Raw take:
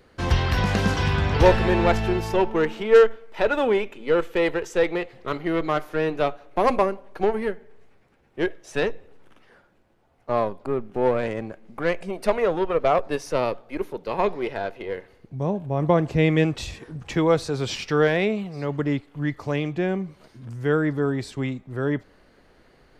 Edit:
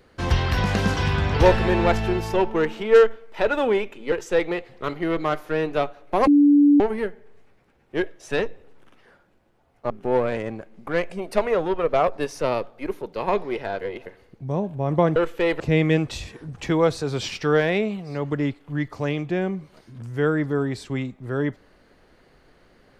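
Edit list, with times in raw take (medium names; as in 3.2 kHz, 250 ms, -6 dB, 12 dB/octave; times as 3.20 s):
4.12–4.56 s: move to 16.07 s
6.71–7.24 s: bleep 289 Hz -11 dBFS
10.34–10.81 s: delete
14.72–14.97 s: reverse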